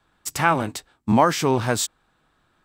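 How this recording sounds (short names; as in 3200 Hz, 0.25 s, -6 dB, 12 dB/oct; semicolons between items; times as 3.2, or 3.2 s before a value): noise floor -67 dBFS; spectral tilt -4.5 dB/oct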